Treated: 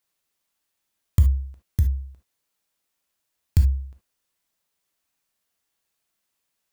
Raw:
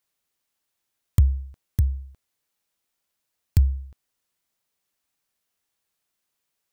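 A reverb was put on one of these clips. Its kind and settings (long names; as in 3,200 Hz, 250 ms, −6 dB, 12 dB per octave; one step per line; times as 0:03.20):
reverb whose tail is shaped and stops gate 90 ms flat, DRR 4.5 dB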